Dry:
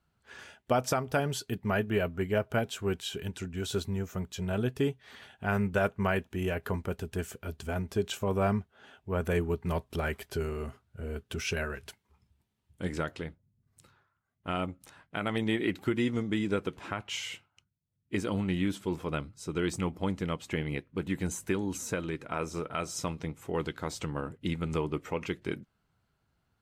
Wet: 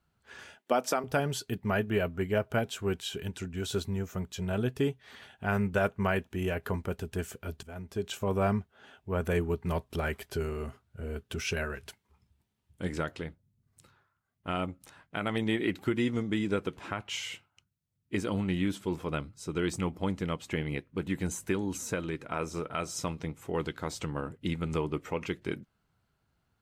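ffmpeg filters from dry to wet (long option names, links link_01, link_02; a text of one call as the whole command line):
ffmpeg -i in.wav -filter_complex "[0:a]asettb=1/sr,asplit=3[link_01][link_02][link_03];[link_01]atrim=end=0.584[link_04];[link_02]atrim=start=0.58:end=1.04,asetpts=PTS-STARTPTS,afade=type=in:duration=0.004:curve=qsin,afade=type=out:start_time=0.456:duration=0.004:curve=qsin,highpass=frequency=220:width=0.5412,highpass=frequency=220:width=1.3066[link_05];[link_03]atrim=start=1.036[link_06];[link_04][link_05]acrossfade=duration=0.004:curve1=hsin:curve2=qsin[link_07];[link_07][link_06]acrossfade=duration=0.004:curve1=qsin:curve2=hsin,asplit=2[link_08][link_09];[link_08]atrim=end=7.63,asetpts=PTS-STARTPTS,afade=type=out:start_time=7.626:duration=0.004:curve=hsin:silence=0.177828[link_10];[link_09]atrim=start=7.63,asetpts=PTS-STARTPTS,afade=type=in:duration=0.65:silence=0.177828[link_11];[link_10][link_11]concat=n=2:v=0:a=1" out.wav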